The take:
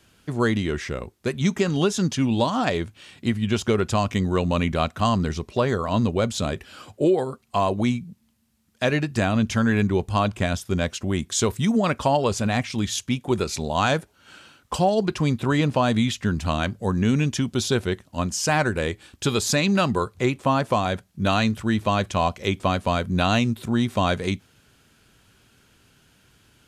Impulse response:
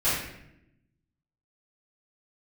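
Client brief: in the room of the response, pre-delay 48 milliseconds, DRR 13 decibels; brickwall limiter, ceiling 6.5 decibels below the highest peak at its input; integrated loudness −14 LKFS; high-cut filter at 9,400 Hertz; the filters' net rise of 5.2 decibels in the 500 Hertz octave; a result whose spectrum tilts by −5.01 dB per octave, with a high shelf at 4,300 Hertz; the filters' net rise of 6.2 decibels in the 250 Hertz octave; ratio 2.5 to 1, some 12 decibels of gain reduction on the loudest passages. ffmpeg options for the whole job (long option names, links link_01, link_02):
-filter_complex "[0:a]lowpass=9400,equalizer=frequency=250:width_type=o:gain=6.5,equalizer=frequency=500:width_type=o:gain=4.5,highshelf=frequency=4300:gain=9,acompressor=threshold=-30dB:ratio=2.5,alimiter=limit=-21dB:level=0:latency=1,asplit=2[link_01][link_02];[1:a]atrim=start_sample=2205,adelay=48[link_03];[link_02][link_03]afir=irnorm=-1:irlink=0,volume=-26.5dB[link_04];[link_01][link_04]amix=inputs=2:normalize=0,volume=17dB"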